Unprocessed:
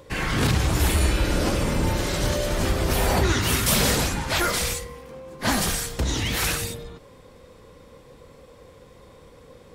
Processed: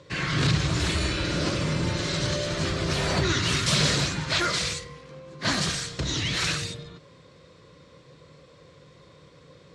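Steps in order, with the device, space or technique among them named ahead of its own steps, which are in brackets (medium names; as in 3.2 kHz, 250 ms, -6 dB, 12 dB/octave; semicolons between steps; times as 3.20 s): car door speaker (cabinet simulation 100–7300 Hz, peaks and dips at 150 Hz +7 dB, 230 Hz -8 dB, 470 Hz -5 dB, 820 Hz -10 dB, 4.1 kHz +5 dB); trim -1 dB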